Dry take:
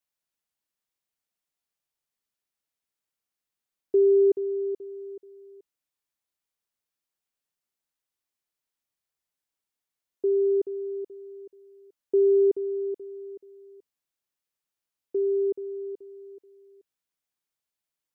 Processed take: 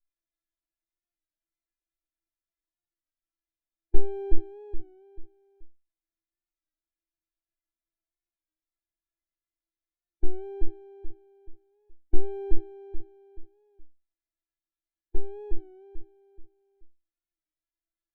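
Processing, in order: minimum comb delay 0.53 ms; tilt -4 dB/oct; harmonic-percussive split percussive +4 dB; bell 330 Hz -3 dB 1.6 oct; metallic resonator 330 Hz, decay 0.28 s, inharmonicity 0.002; record warp 33 1/3 rpm, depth 100 cents; gain +6.5 dB

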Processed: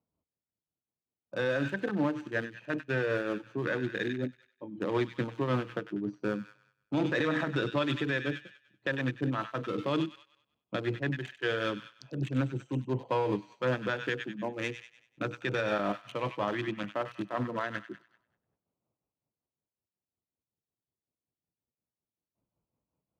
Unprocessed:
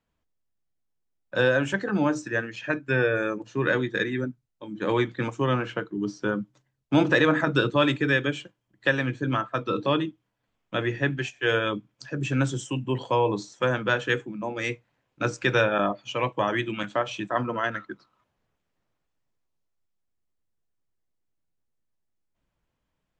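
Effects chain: Wiener smoothing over 25 samples; thin delay 97 ms, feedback 42%, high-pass 1800 Hz, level -7.5 dB; tremolo 5.4 Hz, depth 55%; limiter -18 dBFS, peak gain reduction 9.5 dB; tube stage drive 17 dB, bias 0.25; HPF 89 Hz; ending taper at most 380 dB/s

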